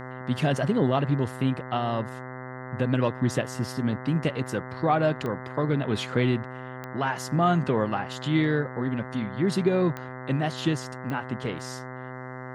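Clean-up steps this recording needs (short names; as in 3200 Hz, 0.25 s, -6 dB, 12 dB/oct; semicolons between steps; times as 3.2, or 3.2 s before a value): de-click; de-hum 128 Hz, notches 16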